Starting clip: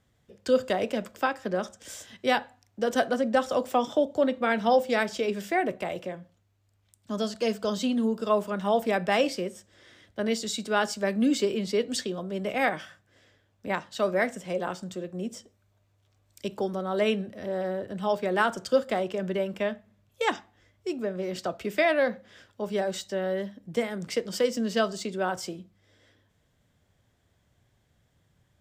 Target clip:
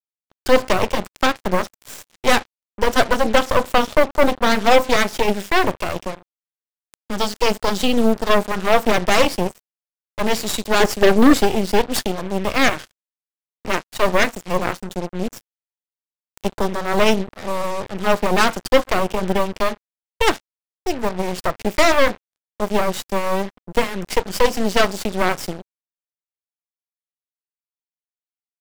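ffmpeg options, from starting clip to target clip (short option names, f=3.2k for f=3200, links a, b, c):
-filter_complex "[0:a]asettb=1/sr,asplit=3[a][b][c];[a]atrim=end=10.804[d];[b]atrim=start=10.8:end=11.38,asetpts=PTS-STARTPTS,afade=t=in:d=0.004:c=qsin,afade=t=out:st=0.576:d=0.004:c=qsin,equalizer=f=380:w=2.3:g=12.5[e];[c]atrim=start=11.376[f];[d][e]acrossfade=d=0.004:c1=hsin:c2=qsin[g];[g][f]acrossfade=d=0.004:c1=qsin:c2=hsin,aeval=exprs='0.335*(cos(1*acos(clip(val(0)/0.335,-1,1)))-cos(1*PI/2))+0.00596*(cos(3*acos(clip(val(0)/0.335,-1,1)))-cos(3*PI/2))+0.00422*(cos(5*acos(clip(val(0)/0.335,-1,1)))-cos(5*PI/2))+0.0841*(cos(8*acos(clip(val(0)/0.335,-1,1)))-cos(8*PI/2))':c=same,acrusher=bits=5:mix=0:aa=0.5,volume=6.5dB"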